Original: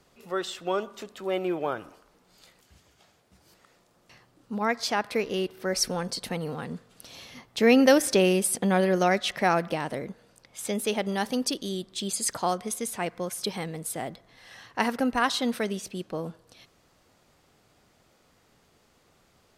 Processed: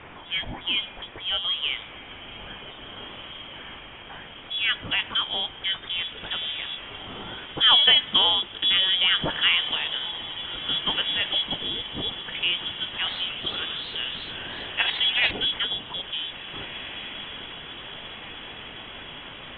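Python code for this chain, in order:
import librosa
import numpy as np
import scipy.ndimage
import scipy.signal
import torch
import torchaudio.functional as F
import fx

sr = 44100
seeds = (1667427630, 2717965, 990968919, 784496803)

y = x + 0.5 * 10.0 ** (-24.5 / 20.0) * np.diff(np.sign(x), prepend=np.sign(x[:1]))
y = fx.freq_invert(y, sr, carrier_hz=3600)
y = fx.air_absorb(y, sr, metres=110.0)
y = fx.doubler(y, sr, ms=20.0, db=-13.5)
y = fx.echo_diffused(y, sr, ms=1753, feedback_pct=67, wet_db=-13)
y = fx.echo_warbled(y, sr, ms=82, feedback_pct=63, rate_hz=2.8, cents=208, wet_db=-9.0, at=(12.94, 15.31))
y = y * 10.0 ** (3.0 / 20.0)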